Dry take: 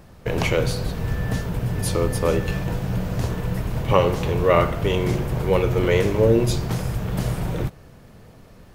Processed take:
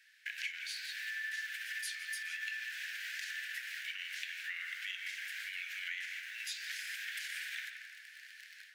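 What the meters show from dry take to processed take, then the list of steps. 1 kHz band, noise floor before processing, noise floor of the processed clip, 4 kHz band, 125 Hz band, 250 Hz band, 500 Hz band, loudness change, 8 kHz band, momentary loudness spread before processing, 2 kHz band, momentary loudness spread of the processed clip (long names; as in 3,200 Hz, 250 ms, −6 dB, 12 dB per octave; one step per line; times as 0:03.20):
−34.5 dB, −47 dBFS, −56 dBFS, −7.5 dB, below −40 dB, below −40 dB, below −40 dB, −17.5 dB, −11.0 dB, 8 LU, −4.5 dB, 6 LU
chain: automatic gain control gain up to 9.5 dB
in parallel at −11 dB: bit reduction 5 bits
on the sum: brickwall limiter −9 dBFS, peak gain reduction 10 dB
Butterworth high-pass 1,600 Hz 96 dB per octave
spectral tilt −4.5 dB per octave
downward compressor 4 to 1, threshold −42 dBFS, peak gain reduction 15 dB
on a send: tape delay 166 ms, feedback 58%, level −6 dB, low-pass 2,700 Hz
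on the sum: level +2.5 dB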